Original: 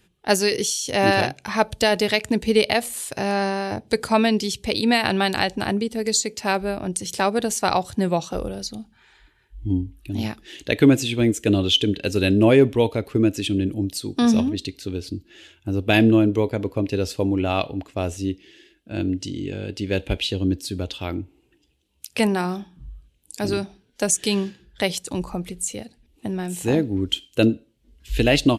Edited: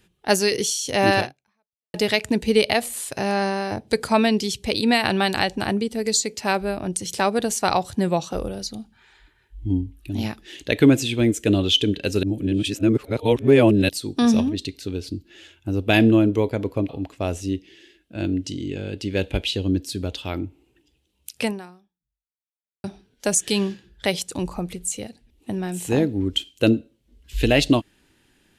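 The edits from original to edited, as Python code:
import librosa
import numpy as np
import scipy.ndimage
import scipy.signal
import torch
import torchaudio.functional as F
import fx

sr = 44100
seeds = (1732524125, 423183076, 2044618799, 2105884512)

y = fx.edit(x, sr, fx.fade_out_span(start_s=1.19, length_s=0.75, curve='exp'),
    fx.reverse_span(start_s=12.23, length_s=1.66),
    fx.cut(start_s=16.89, length_s=0.76),
    fx.fade_out_span(start_s=22.16, length_s=1.44, curve='exp'), tone=tone)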